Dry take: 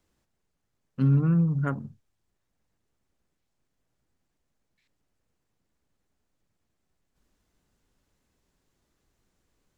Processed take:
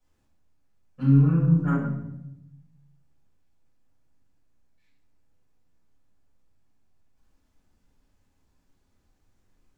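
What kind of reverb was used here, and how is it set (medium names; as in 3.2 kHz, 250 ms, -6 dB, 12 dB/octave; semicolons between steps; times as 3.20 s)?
simulated room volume 270 m³, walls mixed, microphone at 5.8 m; trim -13.5 dB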